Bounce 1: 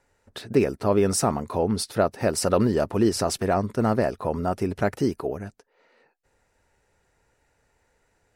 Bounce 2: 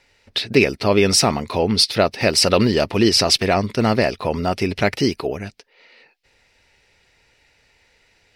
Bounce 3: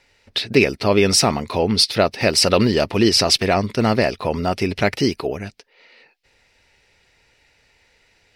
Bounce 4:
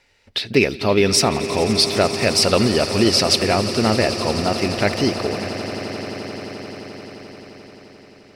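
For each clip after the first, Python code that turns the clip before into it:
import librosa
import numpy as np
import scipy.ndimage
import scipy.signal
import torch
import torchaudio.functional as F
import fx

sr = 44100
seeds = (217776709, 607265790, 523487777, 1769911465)

y1 = fx.band_shelf(x, sr, hz=3300.0, db=13.5, octaves=1.7)
y1 = y1 * librosa.db_to_amplitude(4.5)
y2 = y1
y3 = fx.echo_swell(y2, sr, ms=87, loudest=8, wet_db=-17)
y3 = y3 * librosa.db_to_amplitude(-1.0)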